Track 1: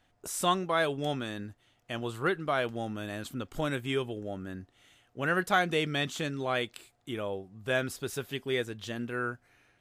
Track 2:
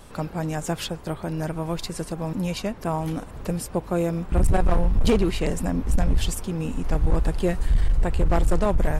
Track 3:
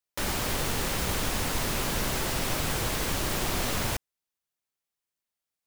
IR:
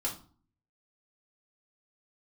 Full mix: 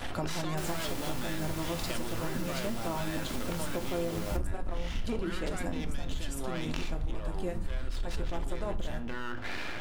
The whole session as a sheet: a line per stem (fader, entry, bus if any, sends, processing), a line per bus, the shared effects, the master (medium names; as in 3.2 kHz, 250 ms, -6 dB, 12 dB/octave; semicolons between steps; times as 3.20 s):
-7.5 dB, 0.00 s, send -7 dB, low-pass 3.9 kHz 24 dB/octave; half-wave rectifier; level flattener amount 100%
-3.0 dB, 0.00 s, send -6 dB, none
-0.5 dB, 0.40 s, send -9.5 dB, auto duck -9 dB, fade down 2.00 s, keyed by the first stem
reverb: on, RT60 0.45 s, pre-delay 3 ms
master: compression 5:1, threshold -30 dBFS, peak gain reduction 18.5 dB